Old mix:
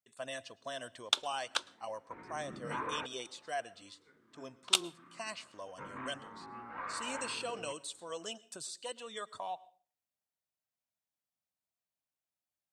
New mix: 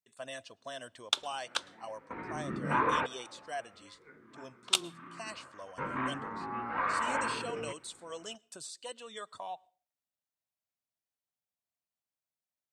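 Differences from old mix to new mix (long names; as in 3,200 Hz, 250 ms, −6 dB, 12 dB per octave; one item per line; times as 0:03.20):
speech: send −9.5 dB
second sound +10.0 dB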